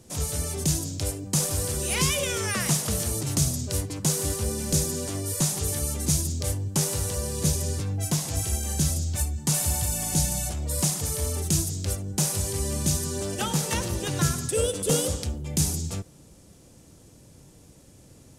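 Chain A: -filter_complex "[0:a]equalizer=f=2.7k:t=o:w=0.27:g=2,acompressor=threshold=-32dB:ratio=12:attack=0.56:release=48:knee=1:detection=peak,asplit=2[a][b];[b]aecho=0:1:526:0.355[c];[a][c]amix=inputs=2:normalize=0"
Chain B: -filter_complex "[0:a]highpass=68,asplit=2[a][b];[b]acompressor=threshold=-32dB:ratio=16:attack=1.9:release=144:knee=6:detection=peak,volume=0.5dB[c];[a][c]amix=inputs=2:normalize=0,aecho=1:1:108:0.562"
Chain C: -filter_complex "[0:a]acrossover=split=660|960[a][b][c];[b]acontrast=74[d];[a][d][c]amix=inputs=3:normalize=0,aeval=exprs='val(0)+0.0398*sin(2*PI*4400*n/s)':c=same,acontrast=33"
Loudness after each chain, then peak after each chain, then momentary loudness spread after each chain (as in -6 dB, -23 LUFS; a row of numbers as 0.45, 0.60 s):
-36.0, -23.0, -19.0 LUFS; -21.5, -7.0, -5.0 dBFS; 10, 4, 5 LU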